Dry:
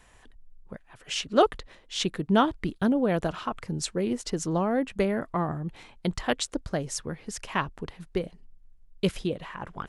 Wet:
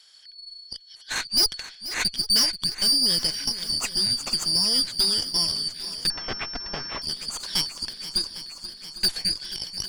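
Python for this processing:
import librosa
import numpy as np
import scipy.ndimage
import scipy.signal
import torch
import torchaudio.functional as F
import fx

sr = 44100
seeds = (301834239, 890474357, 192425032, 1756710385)

y = fx.band_shuffle(x, sr, order='4321')
y = fx.low_shelf(y, sr, hz=400.0, db=-10.5)
y = fx.tube_stage(y, sr, drive_db=24.0, bias=0.8)
y = fx.echo_swing(y, sr, ms=803, ratio=1.5, feedback_pct=61, wet_db=-14.0)
y = fx.pwm(y, sr, carrier_hz=5400.0, at=(6.1, 7.02))
y = y * librosa.db_to_amplitude(8.0)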